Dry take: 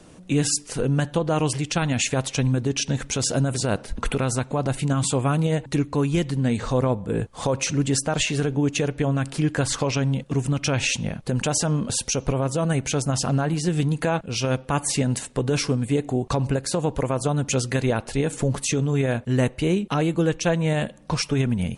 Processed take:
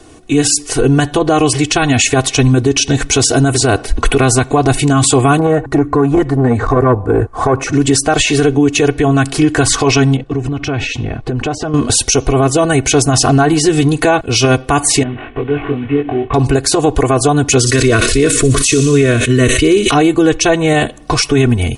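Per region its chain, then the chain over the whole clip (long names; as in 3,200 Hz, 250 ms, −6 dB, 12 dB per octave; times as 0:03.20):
0:05.39–0:07.73: high shelf with overshoot 2,100 Hz −13 dB, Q 1.5 + saturating transformer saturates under 380 Hz
0:10.16–0:11.74: downward compressor 10 to 1, threshold −25 dBFS + head-to-tape spacing loss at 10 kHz 23 dB
0:15.03–0:16.34: variable-slope delta modulation 16 kbit/s + downward compressor 2 to 1, threshold −38 dBFS + double-tracking delay 21 ms −3 dB
0:17.58–0:19.91: Butterworth band-reject 820 Hz, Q 1.9 + delay with a high-pass on its return 60 ms, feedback 67%, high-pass 3,600 Hz, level −7 dB + level that may fall only so fast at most 36 dB per second
whole clip: comb filter 2.7 ms, depth 91%; automatic gain control gain up to 7.5 dB; boost into a limiter +7.5 dB; level −1 dB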